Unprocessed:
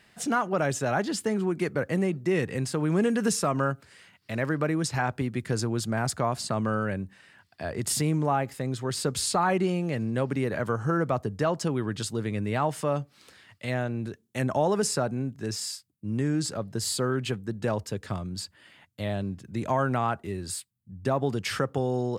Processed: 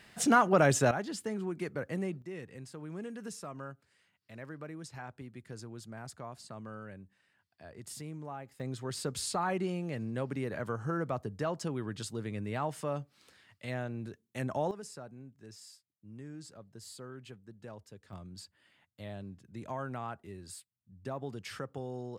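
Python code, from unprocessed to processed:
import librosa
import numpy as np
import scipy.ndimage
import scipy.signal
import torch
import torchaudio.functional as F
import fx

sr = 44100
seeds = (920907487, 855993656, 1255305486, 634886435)

y = fx.gain(x, sr, db=fx.steps((0.0, 2.0), (0.91, -9.0), (2.22, -17.5), (8.6, -8.0), (14.71, -19.5), (18.13, -13.0)))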